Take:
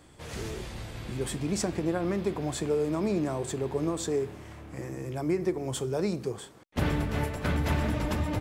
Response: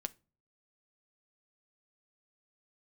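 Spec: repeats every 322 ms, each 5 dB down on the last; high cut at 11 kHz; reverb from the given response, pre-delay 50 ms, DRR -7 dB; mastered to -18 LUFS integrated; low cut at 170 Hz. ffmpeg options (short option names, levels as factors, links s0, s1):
-filter_complex "[0:a]highpass=170,lowpass=11000,aecho=1:1:322|644|966|1288|1610|1932|2254:0.562|0.315|0.176|0.0988|0.0553|0.031|0.0173,asplit=2[s0][s1];[1:a]atrim=start_sample=2205,adelay=50[s2];[s1][s2]afir=irnorm=-1:irlink=0,volume=2.66[s3];[s0][s3]amix=inputs=2:normalize=0,volume=1.78"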